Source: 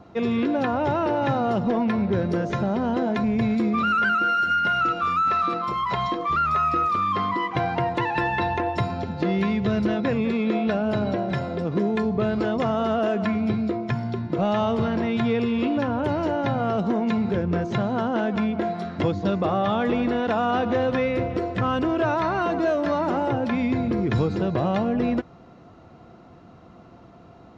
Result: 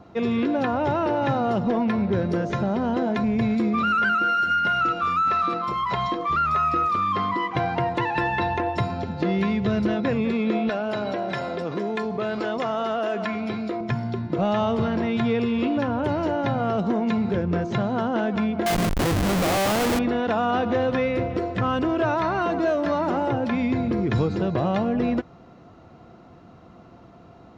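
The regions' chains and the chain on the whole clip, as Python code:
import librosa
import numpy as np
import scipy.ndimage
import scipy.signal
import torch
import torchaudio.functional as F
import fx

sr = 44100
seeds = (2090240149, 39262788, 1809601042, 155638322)

y = fx.chain(x, sr, fx.highpass(hz=560.0, slope=6),
    fx.env_flatten(amount_pct=50), at=(10.69, 13.81))
y = fx.chain(y, sr, fx.peak_eq(hz=720.0, db=4.5, octaves=1.5),
    fx.schmitt(flips_db=-26.5), at=(18.66, 19.99))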